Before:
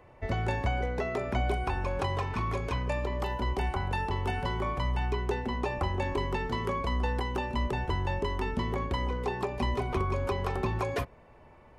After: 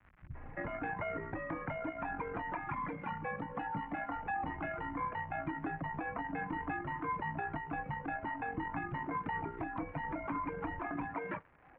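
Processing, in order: added harmonics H 6 -22 dB, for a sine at -17 dBFS; 2.41–4.15 comb 3.3 ms, depth 56%; in parallel at +2 dB: compressor, threshold -42 dBFS, peak gain reduction 17 dB; on the sum: bands offset in time lows, highs 0.35 s, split 190 Hz; on a send at -16 dB: reverb RT60 0.35 s, pre-delay 3 ms; on the sum: reverb removal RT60 1.1 s; crackle 220/s -40 dBFS; limiter -25 dBFS, peak gain reduction 11 dB; mistuned SSB -91 Hz 170–2200 Hz; bell 440 Hz -9 dB 1.2 oct; gain +1 dB

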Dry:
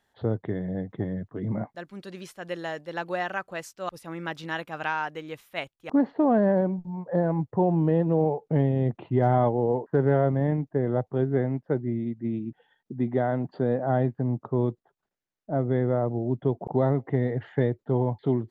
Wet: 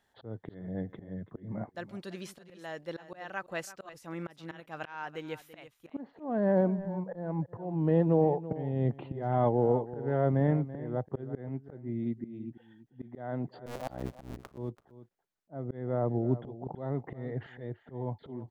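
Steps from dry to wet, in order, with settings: 13.66–14.58 cycle switcher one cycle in 2, muted; auto swell 0.407 s; echo 0.334 s -15 dB; gain -1.5 dB

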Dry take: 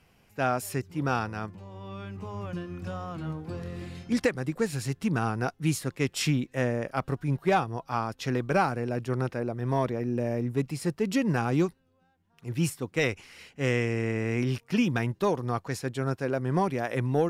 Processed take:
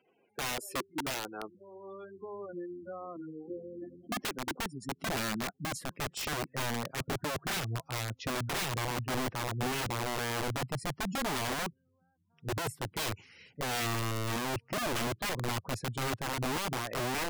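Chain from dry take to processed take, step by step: spectral gate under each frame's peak -15 dB strong; high-pass sweep 370 Hz -> 110 Hz, 3.5–7.43; wrapped overs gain 22.5 dB; gain -6 dB

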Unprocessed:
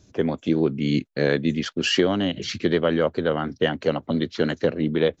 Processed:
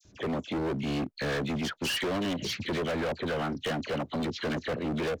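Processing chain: dispersion lows, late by 50 ms, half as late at 2000 Hz; hard clip -26 dBFS, distortion -5 dB; gain -2 dB

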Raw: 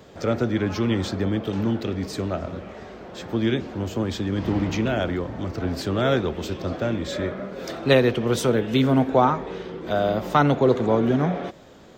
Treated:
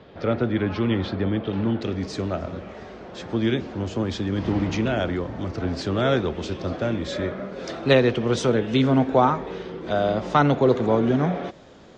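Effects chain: LPF 4000 Hz 24 dB/oct, from 1.81 s 7000 Hz

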